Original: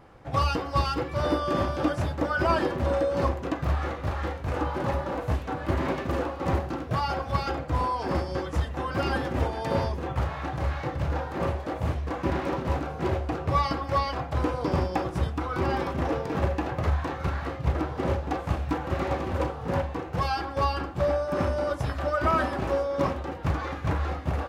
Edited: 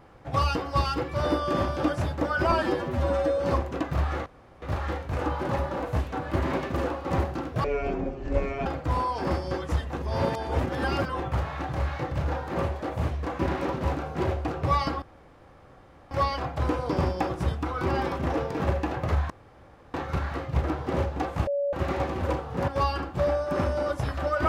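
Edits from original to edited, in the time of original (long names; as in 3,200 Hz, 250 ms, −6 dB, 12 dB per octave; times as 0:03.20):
0:02.52–0:03.10: time-stretch 1.5×
0:03.97: splice in room tone 0.36 s
0:06.99–0:07.50: play speed 50%
0:08.80–0:10.04: reverse
0:13.86: splice in room tone 1.09 s
0:17.05: splice in room tone 0.64 s
0:18.58–0:18.84: beep over 567 Hz −23.5 dBFS
0:19.79–0:20.49: remove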